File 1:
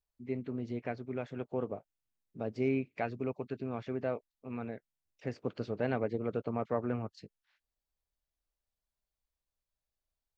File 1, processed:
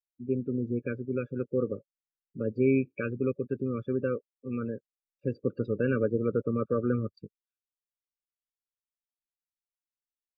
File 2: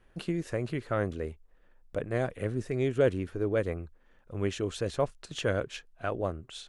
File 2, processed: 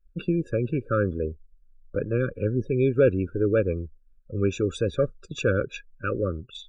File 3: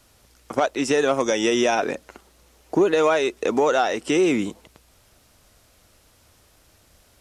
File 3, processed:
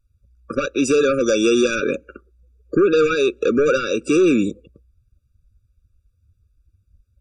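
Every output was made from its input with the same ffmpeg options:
ffmpeg -i in.wav -af "aeval=exprs='0.473*(cos(1*acos(clip(val(0)/0.473,-1,1)))-cos(1*PI/2))+0.15*(cos(5*acos(clip(val(0)/0.473,-1,1)))-cos(5*PI/2))':channel_layout=same,afftdn=noise_reduction=33:noise_floor=-37,afftfilt=real='re*eq(mod(floor(b*sr/1024/560),2),0)':imag='im*eq(mod(floor(b*sr/1024/560),2),0)':win_size=1024:overlap=0.75,volume=-1dB" out.wav

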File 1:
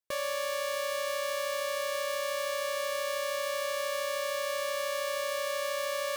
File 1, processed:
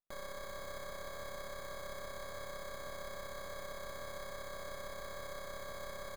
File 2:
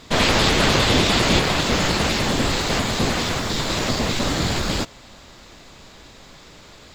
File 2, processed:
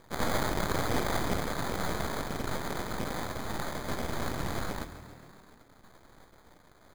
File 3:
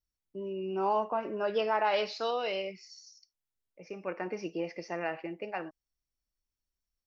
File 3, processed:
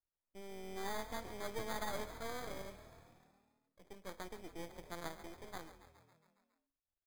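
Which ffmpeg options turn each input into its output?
ffmpeg -i in.wav -filter_complex "[0:a]acrusher=samples=16:mix=1:aa=0.000001,aeval=exprs='max(val(0),0)':channel_layout=same,asplit=8[link_01][link_02][link_03][link_04][link_05][link_06][link_07][link_08];[link_02]adelay=138,afreqshift=39,volume=-13dB[link_09];[link_03]adelay=276,afreqshift=78,volume=-17dB[link_10];[link_04]adelay=414,afreqshift=117,volume=-21dB[link_11];[link_05]adelay=552,afreqshift=156,volume=-25dB[link_12];[link_06]adelay=690,afreqshift=195,volume=-29.1dB[link_13];[link_07]adelay=828,afreqshift=234,volume=-33.1dB[link_14];[link_08]adelay=966,afreqshift=273,volume=-37.1dB[link_15];[link_01][link_09][link_10][link_11][link_12][link_13][link_14][link_15]amix=inputs=8:normalize=0,volume=-9dB" out.wav

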